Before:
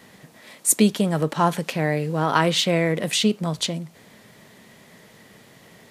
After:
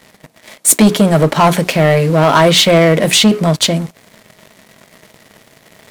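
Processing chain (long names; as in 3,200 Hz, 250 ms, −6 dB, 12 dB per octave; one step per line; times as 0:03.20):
hollow resonant body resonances 640/2,200 Hz, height 7 dB
reversed playback
upward compression, threshold −41 dBFS
reversed playback
mains-hum notches 60/120/180/240/300/360/420 Hz
leveller curve on the samples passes 3
level +2 dB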